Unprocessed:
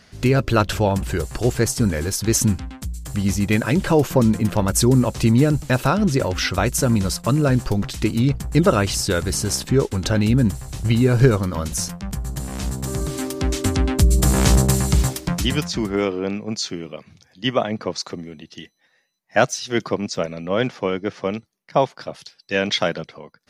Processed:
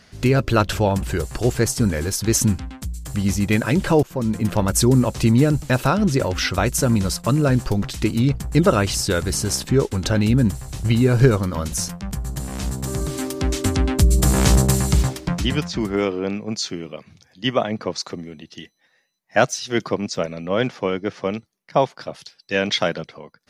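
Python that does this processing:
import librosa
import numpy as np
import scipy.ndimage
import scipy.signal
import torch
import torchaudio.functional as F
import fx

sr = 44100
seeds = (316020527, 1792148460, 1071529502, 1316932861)

y = fx.high_shelf(x, sr, hz=7300.0, db=-12.0, at=(15.03, 15.81))
y = fx.edit(y, sr, fx.fade_in_from(start_s=4.03, length_s=0.48, floor_db=-21.0), tone=tone)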